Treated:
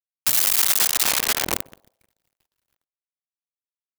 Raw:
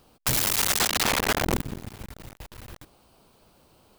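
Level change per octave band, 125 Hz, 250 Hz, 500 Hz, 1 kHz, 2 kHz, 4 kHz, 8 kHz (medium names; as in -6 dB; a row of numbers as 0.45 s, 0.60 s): -11.5 dB, -7.0 dB, -4.5 dB, -2.5 dB, 0.0 dB, +2.5 dB, +5.5 dB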